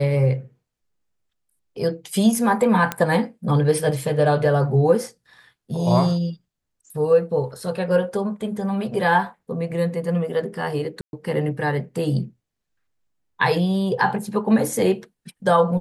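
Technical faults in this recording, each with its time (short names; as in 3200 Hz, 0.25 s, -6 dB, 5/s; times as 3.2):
2.92 pop -8 dBFS
11.01–11.13 gap 0.121 s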